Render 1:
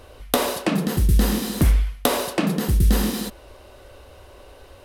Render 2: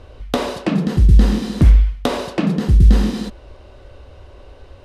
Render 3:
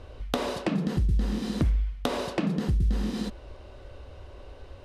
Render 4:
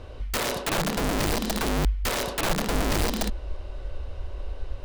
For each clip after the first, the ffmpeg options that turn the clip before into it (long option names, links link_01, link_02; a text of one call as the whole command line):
ffmpeg -i in.wav -af "lowpass=5700,lowshelf=frequency=270:gain=9,volume=-1dB" out.wav
ffmpeg -i in.wav -af "acompressor=threshold=-21dB:ratio=3,volume=-4dB" out.wav
ffmpeg -i in.wav -af "aeval=exprs='(mod(15.8*val(0)+1,2)-1)/15.8':channel_layout=same,asubboost=boost=5.5:cutoff=57,volume=3.5dB" out.wav